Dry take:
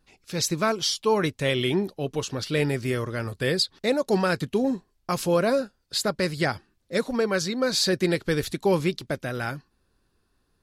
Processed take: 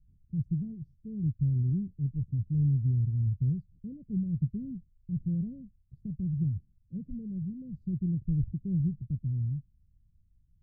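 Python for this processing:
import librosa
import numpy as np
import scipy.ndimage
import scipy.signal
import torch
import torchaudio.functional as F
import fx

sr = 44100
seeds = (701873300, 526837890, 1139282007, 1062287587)

y = scipy.signal.sosfilt(scipy.signal.cheby2(4, 80, 870.0, 'lowpass', fs=sr, output='sos'), x)
y = y * librosa.db_to_amplitude(7.0)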